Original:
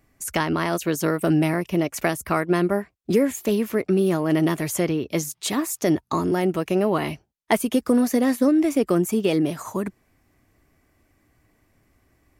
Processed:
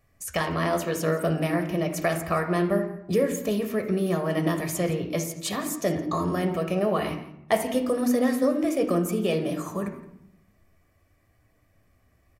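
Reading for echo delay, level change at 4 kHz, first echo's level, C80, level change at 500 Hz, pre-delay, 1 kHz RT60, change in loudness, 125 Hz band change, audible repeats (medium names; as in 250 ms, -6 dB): 168 ms, -3.0 dB, -18.5 dB, 11.0 dB, -2.0 dB, 11 ms, 0.75 s, -3.5 dB, -2.0 dB, 1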